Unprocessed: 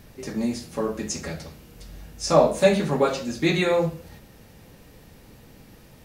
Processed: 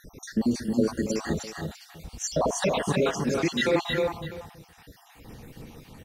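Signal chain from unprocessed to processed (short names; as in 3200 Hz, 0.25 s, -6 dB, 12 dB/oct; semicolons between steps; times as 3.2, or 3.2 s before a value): random spectral dropouts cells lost 62%; high shelf 9000 Hz -4.5 dB; notch 580 Hz, Q 12; limiter -20.5 dBFS, peak gain reduction 11 dB; tapped delay 0.281/0.314/0.65 s -11.5/-3.5/-16.5 dB; gain +4.5 dB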